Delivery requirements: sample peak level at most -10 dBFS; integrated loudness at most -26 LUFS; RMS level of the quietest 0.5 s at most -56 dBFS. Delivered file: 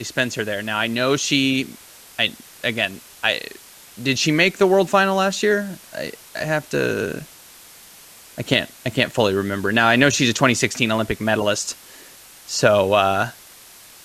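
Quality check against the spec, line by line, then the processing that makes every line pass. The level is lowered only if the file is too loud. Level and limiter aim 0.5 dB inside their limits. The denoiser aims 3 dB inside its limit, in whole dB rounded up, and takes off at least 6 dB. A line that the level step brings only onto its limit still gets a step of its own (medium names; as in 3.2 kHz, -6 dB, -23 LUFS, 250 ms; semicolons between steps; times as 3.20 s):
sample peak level -3.0 dBFS: fail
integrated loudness -19.5 LUFS: fail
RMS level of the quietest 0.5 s -45 dBFS: fail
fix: noise reduction 7 dB, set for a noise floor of -45 dBFS; trim -7 dB; peak limiter -10.5 dBFS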